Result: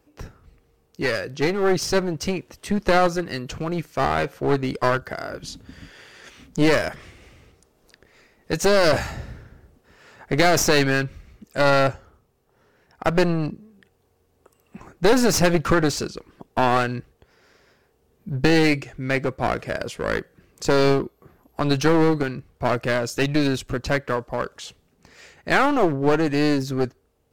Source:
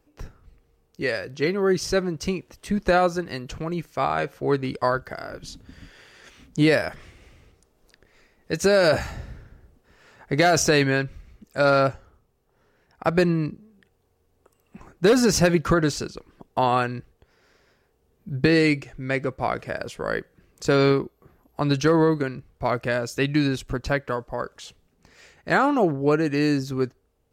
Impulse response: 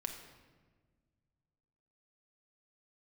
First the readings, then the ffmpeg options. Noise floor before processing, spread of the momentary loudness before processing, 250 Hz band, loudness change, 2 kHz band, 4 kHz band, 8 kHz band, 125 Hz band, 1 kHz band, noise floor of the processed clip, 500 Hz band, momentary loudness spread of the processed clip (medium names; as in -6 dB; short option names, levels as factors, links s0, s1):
-67 dBFS, 14 LU, +1.0 dB, +1.0 dB, +2.0 dB, +2.5 dB, +2.0 dB, +0.5 dB, +1.5 dB, -65 dBFS, +1.0 dB, 14 LU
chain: -af "highpass=f=60:p=1,aeval=exprs='clip(val(0),-1,0.0398)':c=same,volume=1.58"